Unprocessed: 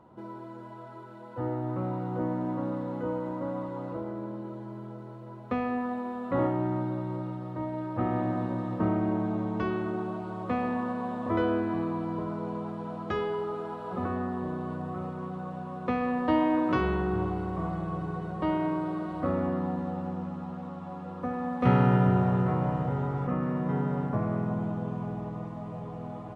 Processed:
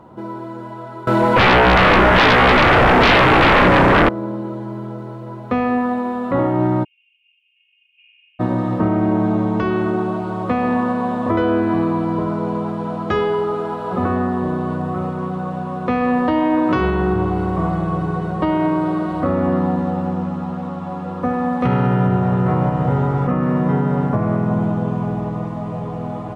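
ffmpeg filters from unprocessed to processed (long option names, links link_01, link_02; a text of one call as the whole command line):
ffmpeg -i in.wav -filter_complex "[0:a]asettb=1/sr,asplit=3[link_01][link_02][link_03];[link_01]atrim=end=1.074[link_04];[link_02]atrim=start=1.07:end=4.09,asetpts=PTS-STARTPTS,afade=type=in:duration=0.004:curve=qsin,afade=type=out:start_time=3.016:duration=0.004:curve=qsin,aeval=exprs='0.112*sin(PI/2*7.94*val(0)/0.112)':channel_layout=same[link_05];[link_03]atrim=start=4.086[link_06];[link_04][link_05]acrossfade=duration=0.004:curve1=hsin:curve2=qsin[link_07];[link_07][link_06]acrossfade=duration=0.004:curve1=qsin:curve2=hsin,asplit=3[link_08][link_09][link_10];[link_08]afade=type=out:start_time=6.83:duration=0.02[link_11];[link_09]asuperpass=centerf=2700:order=8:qfactor=4.9,afade=type=in:start_time=6.83:duration=0.02,afade=type=out:start_time=8.39:duration=0.02[link_12];[link_10]afade=type=in:start_time=8.39:duration=0.02[link_13];[link_11][link_12][link_13]amix=inputs=3:normalize=0,acontrast=77,alimiter=limit=-14dB:level=0:latency=1:release=203,volume=5.5dB" out.wav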